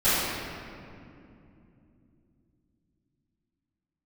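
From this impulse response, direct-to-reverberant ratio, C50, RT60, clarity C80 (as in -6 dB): -19.0 dB, -4.0 dB, 2.7 s, -1.5 dB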